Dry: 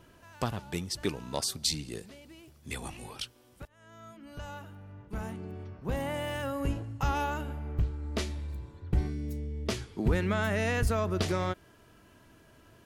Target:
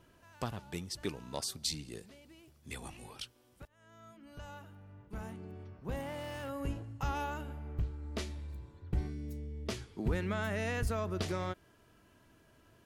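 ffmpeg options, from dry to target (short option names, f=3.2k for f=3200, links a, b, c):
-filter_complex "[0:a]asettb=1/sr,asplit=3[a][b][c];[a]atrim=end=6.014[d];[b]atrim=start=6.01:end=6.49,asetpts=PTS-STARTPTS,afade=t=in:d=0.004:c=qsin,afade=t=out:st=0.476:d=0.004:c=qsin,asoftclip=type=hard:threshold=-31.5dB[e];[c]atrim=start=6.486[f];[d][e]acrossfade=d=0.004:c1=hsin:c2=qsin[g];[g][f]acrossfade=d=0.004:c1=qsin:c2=hsin,volume=-6dB"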